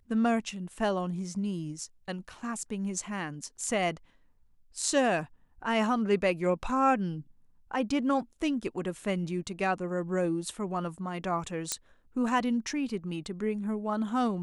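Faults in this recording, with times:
11.72 s: pop -12 dBFS

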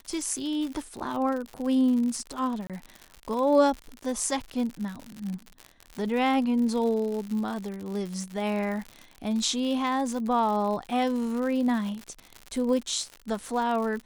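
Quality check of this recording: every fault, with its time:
crackle 95 per s -32 dBFS
2.67–2.70 s: dropout 27 ms

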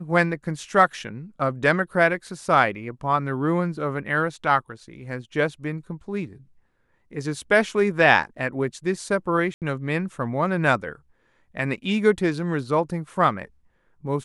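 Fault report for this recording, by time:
9.54–9.62 s: dropout 78 ms

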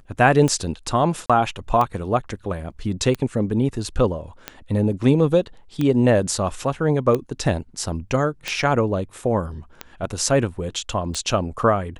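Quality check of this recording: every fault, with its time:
tick 45 rpm -11 dBFS
1.26–1.30 s: dropout 36 ms

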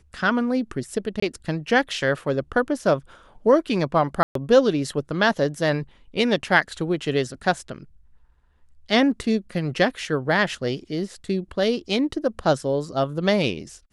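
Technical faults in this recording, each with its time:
1.20–1.22 s: dropout 24 ms
4.23–4.35 s: dropout 123 ms

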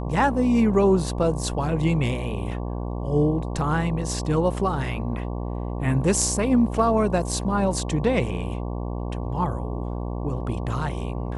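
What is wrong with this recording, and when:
buzz 60 Hz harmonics 19 -29 dBFS

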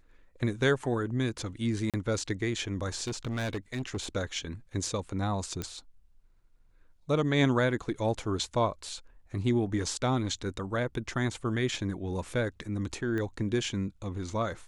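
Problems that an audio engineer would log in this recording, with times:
1.90–1.94 s: dropout 37 ms
3.07–4.04 s: clipped -28.5 dBFS
5.62 s: pop -19 dBFS
13.18 s: pop -23 dBFS

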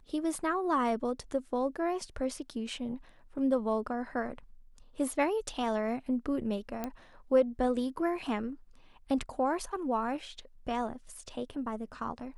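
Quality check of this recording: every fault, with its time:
6.84 s: pop -20 dBFS

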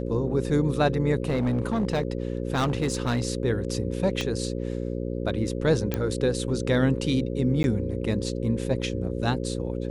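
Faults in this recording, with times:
buzz 60 Hz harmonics 9 -30 dBFS
1.27–3.27 s: clipped -20 dBFS
4.21 s: pop -15 dBFS
5.94 s: pop -12 dBFS
7.63–7.64 s: dropout 11 ms

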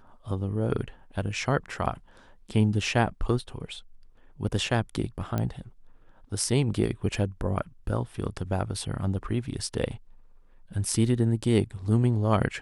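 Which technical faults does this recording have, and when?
5.38 s: pop -15 dBFS

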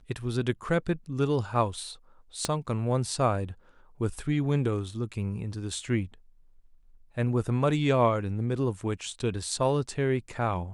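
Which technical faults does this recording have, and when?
2.45 s: pop -12 dBFS

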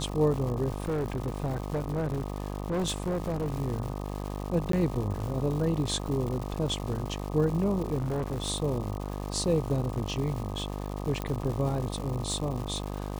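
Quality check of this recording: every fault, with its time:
buzz 50 Hz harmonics 25 -35 dBFS
crackle 300 per s -35 dBFS
0.82–3.54 s: clipped -25.5 dBFS
4.72–4.73 s: dropout 13 ms
7.98–8.42 s: clipped -26.5 dBFS
11.22 s: pop -18 dBFS

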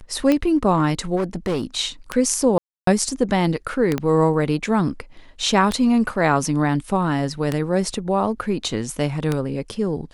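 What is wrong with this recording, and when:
tick 33 1/3 rpm -7 dBFS
1.16–1.63 s: clipped -18 dBFS
2.58–2.87 s: dropout 293 ms
3.98 s: pop -10 dBFS

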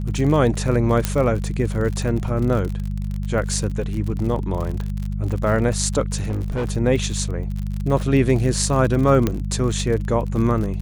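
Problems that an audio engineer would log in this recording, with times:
crackle 46 per s -26 dBFS
hum 50 Hz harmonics 4 -25 dBFS
1.05 s: pop -4 dBFS
6.18–6.71 s: clipped -19.5 dBFS
9.27 s: pop -7 dBFS

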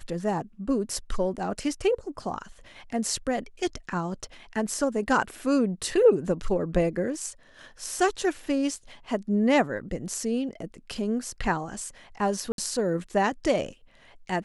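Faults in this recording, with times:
1.37–1.38 s: dropout 7.7 ms
12.52–12.58 s: dropout 62 ms

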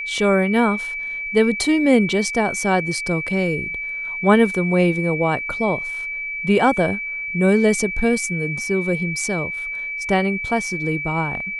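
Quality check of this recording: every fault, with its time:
whine 2.3 kHz -25 dBFS

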